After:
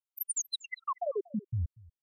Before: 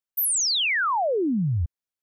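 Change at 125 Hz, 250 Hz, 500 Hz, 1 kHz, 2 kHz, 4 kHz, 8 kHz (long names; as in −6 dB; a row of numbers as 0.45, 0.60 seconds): −9.5, −13.5, −9.5, −12.0, −21.0, −17.0, −11.0 decibels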